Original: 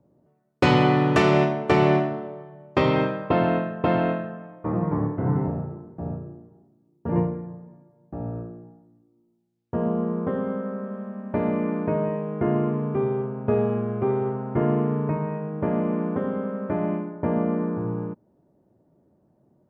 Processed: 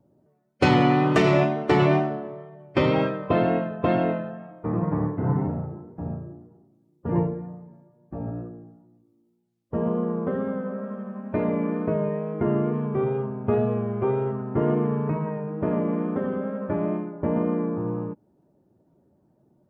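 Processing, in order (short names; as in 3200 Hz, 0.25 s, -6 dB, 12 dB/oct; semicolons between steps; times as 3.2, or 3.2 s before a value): bin magnitudes rounded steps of 15 dB; wow and flutter 29 cents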